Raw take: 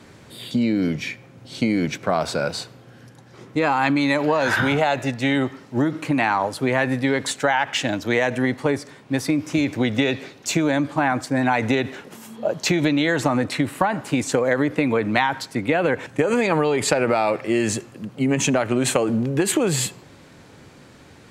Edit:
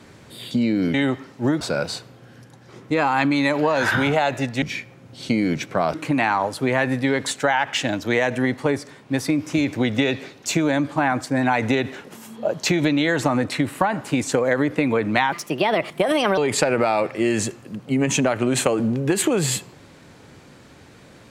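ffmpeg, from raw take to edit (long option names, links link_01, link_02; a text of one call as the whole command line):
ffmpeg -i in.wav -filter_complex "[0:a]asplit=7[link_01][link_02][link_03][link_04][link_05][link_06][link_07];[link_01]atrim=end=0.942[link_08];[link_02]atrim=start=5.268:end=5.942[link_09];[link_03]atrim=start=2.258:end=5.272[link_10];[link_04]atrim=start=0.938:end=2.262[link_11];[link_05]atrim=start=5.938:end=15.324[link_12];[link_06]atrim=start=15.32:end=16.67,asetpts=PTS-STARTPTS,asetrate=56448,aresample=44100[link_13];[link_07]atrim=start=16.666[link_14];[link_08][link_09]acrossfade=duration=0.004:curve1=hsin:curve2=hsin[link_15];[link_15][link_10]acrossfade=duration=0.004:curve1=hsin:curve2=hsin[link_16];[link_16][link_11]acrossfade=duration=0.004:curve1=hsin:curve2=hsin[link_17];[link_17][link_12]acrossfade=duration=0.004:curve1=hsin:curve2=hsin[link_18];[link_18][link_13]acrossfade=duration=0.004:curve1=hsin:curve2=hsin[link_19];[link_19][link_14]acrossfade=duration=0.004:curve1=hsin:curve2=hsin" out.wav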